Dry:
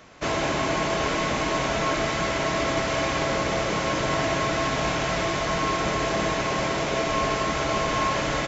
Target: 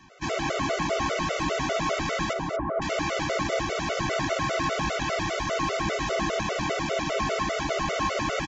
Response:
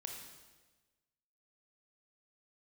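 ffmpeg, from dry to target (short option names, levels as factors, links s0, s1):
-filter_complex "[0:a]asettb=1/sr,asplit=3[s0][s1][s2];[s0]atrim=end=2.334[s3];[s1]atrim=start=2.33:end=2.82,asetpts=PTS-STARTPTS,afade=t=in:d=0.004:c=qsin,afade=t=out:st=0.486:d=0.004:c=qsin,lowpass=f=1300:w=0.5412,lowpass=f=1300:w=1.3066[s4];[s2]atrim=start=2.816[s5];[s3][s4]acrossfade=d=0.004:c1=hsin:c2=qsin[s6];[s6][s5]acrossfade=d=0.004:c1=qsin:c2=hsin,asplit=2[s7][s8];[s8]aecho=0:1:230:0.376[s9];[s7][s9]amix=inputs=2:normalize=0,afftfilt=real='re*gt(sin(2*PI*5*pts/sr)*(1-2*mod(floor(b*sr/1024/380),2)),0)':imag='im*gt(sin(2*PI*5*pts/sr)*(1-2*mod(floor(b*sr/1024/380),2)),0)':win_size=1024:overlap=0.75"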